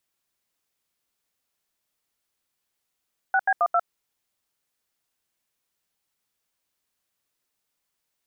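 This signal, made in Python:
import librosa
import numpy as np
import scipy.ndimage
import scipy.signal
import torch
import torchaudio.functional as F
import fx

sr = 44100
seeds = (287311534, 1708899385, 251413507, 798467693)

y = fx.dtmf(sr, digits='6B12', tone_ms=54, gap_ms=80, level_db=-20.0)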